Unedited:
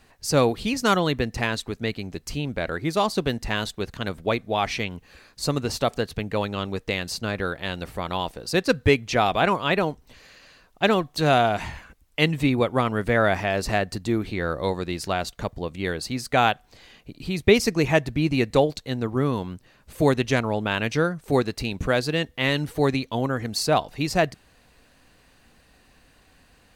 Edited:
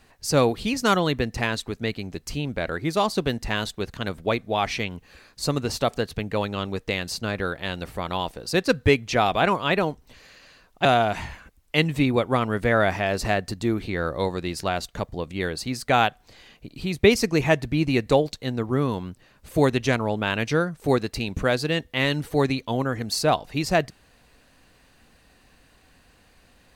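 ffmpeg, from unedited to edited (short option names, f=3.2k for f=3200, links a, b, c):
-filter_complex "[0:a]asplit=2[a][b];[a]atrim=end=10.852[c];[b]atrim=start=11.288[d];[c][d]acrossfade=d=0.004:c1=hsin:c2=hsin"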